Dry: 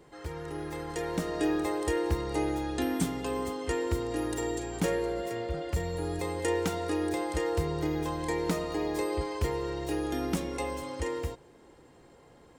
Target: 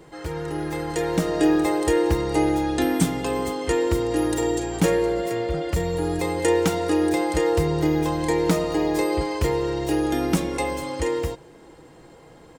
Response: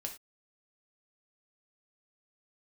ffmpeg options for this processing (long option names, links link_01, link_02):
-af "aecho=1:1:6.2:0.3,volume=8dB"